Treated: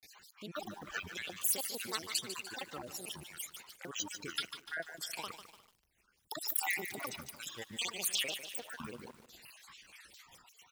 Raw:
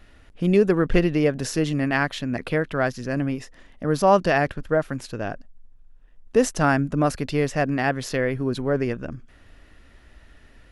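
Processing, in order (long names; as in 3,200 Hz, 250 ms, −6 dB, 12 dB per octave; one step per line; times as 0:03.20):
time-frequency cells dropped at random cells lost 55%
high-pass filter 48 Hz 12 dB per octave
high-shelf EQ 2,400 Hz +7.5 dB
downward compressor 2.5 to 1, threshold −40 dBFS, peak gain reduction 17.5 dB
rotating-speaker cabinet horn 5 Hz, later 0.65 Hz, at 0:05.81
granular cloud 100 ms, spray 24 ms, pitch spread up and down by 12 semitones
spectral tilt +4 dB per octave
on a send: single-tap delay 352 ms −23.5 dB
on the sum: feedback echo at a low word length 148 ms, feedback 55%, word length 9 bits, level −9.5 dB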